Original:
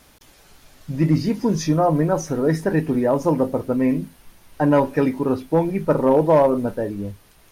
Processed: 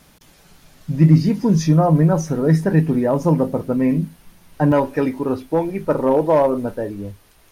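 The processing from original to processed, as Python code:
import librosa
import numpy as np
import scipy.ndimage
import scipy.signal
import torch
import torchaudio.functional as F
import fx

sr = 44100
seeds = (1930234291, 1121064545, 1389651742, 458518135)

y = fx.peak_eq(x, sr, hz=170.0, db=fx.steps((0.0, 10.0), (4.72, -4.5)), octaves=0.51)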